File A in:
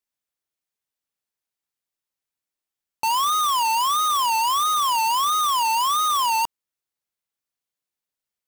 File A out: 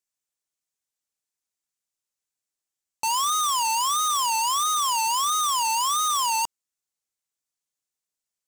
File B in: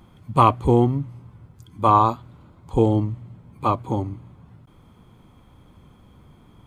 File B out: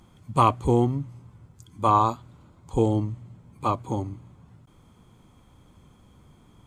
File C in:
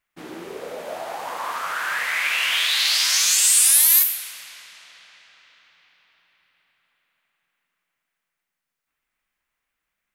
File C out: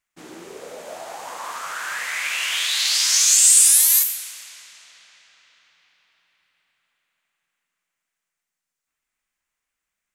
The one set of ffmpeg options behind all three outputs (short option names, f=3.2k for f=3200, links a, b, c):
-af "equalizer=f=7.2k:t=o:w=1:g=9.5,volume=-4dB"